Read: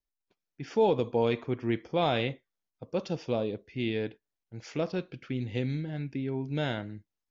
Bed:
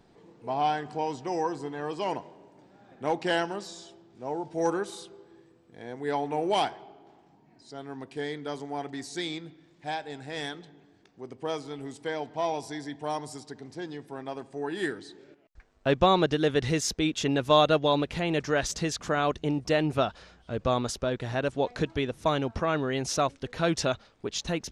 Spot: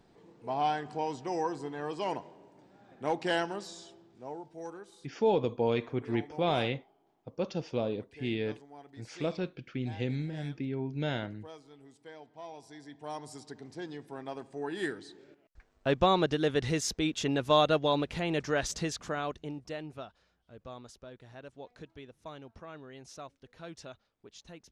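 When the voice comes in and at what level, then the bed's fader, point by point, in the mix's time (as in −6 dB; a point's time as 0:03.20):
4.45 s, −2.0 dB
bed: 0:04.06 −3 dB
0:04.69 −16.5 dB
0:12.47 −16.5 dB
0:13.48 −3.5 dB
0:18.82 −3.5 dB
0:20.16 −19.5 dB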